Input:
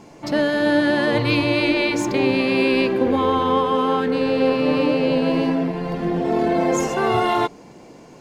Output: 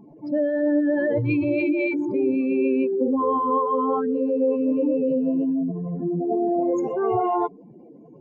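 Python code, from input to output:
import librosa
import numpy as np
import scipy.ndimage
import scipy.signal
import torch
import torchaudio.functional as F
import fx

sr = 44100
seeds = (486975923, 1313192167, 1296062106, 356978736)

y = fx.spec_expand(x, sr, power=2.7)
y = F.gain(torch.from_numpy(y), -2.5).numpy()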